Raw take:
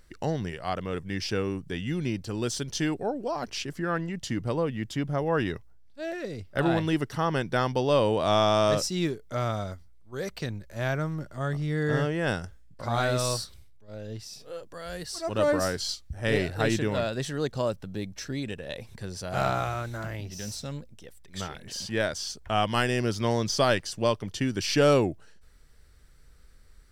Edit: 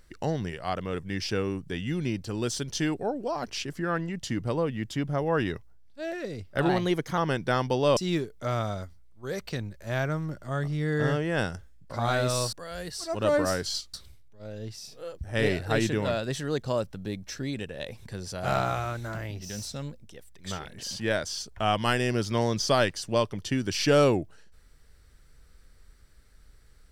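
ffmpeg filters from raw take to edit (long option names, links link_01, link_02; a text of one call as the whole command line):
ffmpeg -i in.wav -filter_complex "[0:a]asplit=7[link_01][link_02][link_03][link_04][link_05][link_06][link_07];[link_01]atrim=end=6.694[link_08];[link_02]atrim=start=6.69:end=7.23,asetpts=PTS-STARTPTS,asetrate=48951,aresample=44100,atrim=end_sample=21454,asetpts=PTS-STARTPTS[link_09];[link_03]atrim=start=7.226:end=8.022[link_10];[link_04]atrim=start=8.858:end=13.422[link_11];[link_05]atrim=start=14.668:end=16.082[link_12];[link_06]atrim=start=13.418:end=14.672[link_13];[link_07]atrim=start=16.078[link_14];[link_08][link_09]acrossfade=duration=0.004:curve1=hsin:curve2=hsin[link_15];[link_15][link_10]acrossfade=duration=0.004:curve1=hsin:curve2=hsin[link_16];[link_16][link_11]acrossfade=duration=0.004:curve1=hsin:curve2=hsin[link_17];[link_17][link_12]acrossfade=duration=0.004:curve1=hsin:curve2=hsin[link_18];[link_18][link_13]acrossfade=duration=0.004:curve1=hsin:curve2=hsin[link_19];[link_19][link_14]acrossfade=duration=0.004:curve1=hsin:curve2=hsin" out.wav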